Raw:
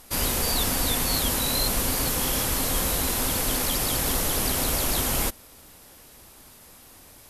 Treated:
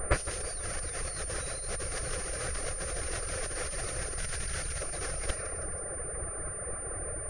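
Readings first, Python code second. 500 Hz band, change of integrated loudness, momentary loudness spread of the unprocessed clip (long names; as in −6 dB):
−5.5 dB, −11.0 dB, 1 LU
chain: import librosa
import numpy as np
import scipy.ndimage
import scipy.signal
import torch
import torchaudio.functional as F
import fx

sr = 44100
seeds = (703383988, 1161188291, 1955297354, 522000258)

y = fx.spec_box(x, sr, start_s=4.18, length_s=0.63, low_hz=240.0, high_hz=1300.0, gain_db=-7)
y = fx.env_lowpass(y, sr, base_hz=1100.0, full_db=-22.5)
y = fx.over_compress(y, sr, threshold_db=-33.0, ratio=-0.5)
y = fx.dereverb_blind(y, sr, rt60_s=1.1)
y = fx.fixed_phaser(y, sr, hz=910.0, stages=6)
y = 10.0 ** (-23.5 / 20.0) * np.tanh(y / 10.0 ** (-23.5 / 20.0))
y = fx.echo_feedback(y, sr, ms=162, feedback_pct=53, wet_db=-12)
y = fx.pwm(y, sr, carrier_hz=9200.0)
y = y * librosa.db_to_amplitude(8.5)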